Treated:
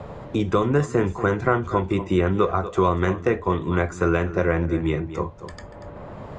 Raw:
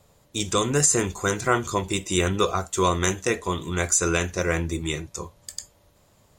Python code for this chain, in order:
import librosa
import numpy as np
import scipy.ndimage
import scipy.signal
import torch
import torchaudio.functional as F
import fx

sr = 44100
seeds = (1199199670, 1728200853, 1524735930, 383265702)

p1 = scipy.signal.sosfilt(scipy.signal.butter(2, 1500.0, 'lowpass', fs=sr, output='sos'), x)
p2 = p1 + fx.echo_single(p1, sr, ms=237, db=-16.0, dry=0)
p3 = fx.band_squash(p2, sr, depth_pct=70)
y = p3 * librosa.db_to_amplitude(3.5)